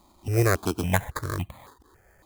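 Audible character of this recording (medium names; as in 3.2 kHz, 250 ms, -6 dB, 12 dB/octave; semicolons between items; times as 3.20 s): aliases and images of a low sample rate 2.8 kHz, jitter 0%; notches that jump at a steady rate 3.6 Hz 440–1500 Hz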